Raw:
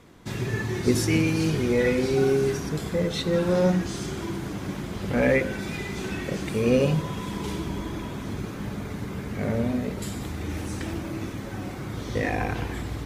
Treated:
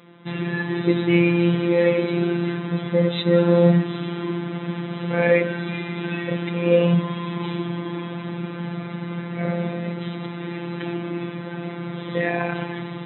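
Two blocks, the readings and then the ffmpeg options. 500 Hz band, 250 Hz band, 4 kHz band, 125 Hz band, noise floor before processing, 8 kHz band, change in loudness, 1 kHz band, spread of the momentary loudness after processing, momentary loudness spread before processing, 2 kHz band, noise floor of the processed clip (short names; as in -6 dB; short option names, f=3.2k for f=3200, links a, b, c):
+4.0 dB, +4.0 dB, +2.0 dB, +3.5 dB, -35 dBFS, under -40 dB, +3.5 dB, +3.0 dB, 13 LU, 12 LU, +3.5 dB, -33 dBFS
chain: -af "afftfilt=real='hypot(re,im)*cos(PI*b)':imag='0':win_size=1024:overlap=0.75,afftfilt=real='re*between(b*sr/4096,120,4000)':imag='im*between(b*sr/4096,120,4000)':win_size=4096:overlap=0.75,volume=7dB"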